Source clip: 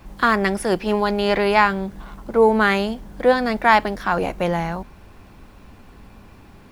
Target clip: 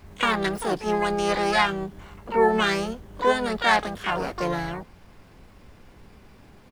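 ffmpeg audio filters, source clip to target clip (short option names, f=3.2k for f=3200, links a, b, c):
-filter_complex "[0:a]asplit=3[a][b][c];[b]asetrate=37084,aresample=44100,atempo=1.18921,volume=-7dB[d];[c]asetrate=88200,aresample=44100,atempo=0.5,volume=-3dB[e];[a][d][e]amix=inputs=3:normalize=0,volume=-7.5dB"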